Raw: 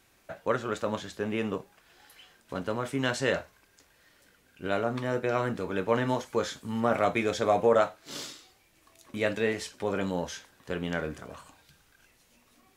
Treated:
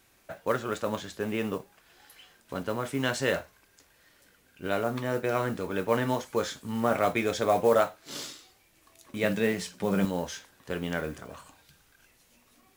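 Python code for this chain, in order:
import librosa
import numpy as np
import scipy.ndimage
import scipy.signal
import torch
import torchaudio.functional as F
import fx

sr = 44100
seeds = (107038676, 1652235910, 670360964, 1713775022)

y = fx.peak_eq(x, sr, hz=180.0, db=14.5, octaves=0.4, at=(9.23, 10.05))
y = fx.mod_noise(y, sr, seeds[0], snr_db=26)
y = fx.high_shelf(y, sr, hz=10000.0, db=4.5)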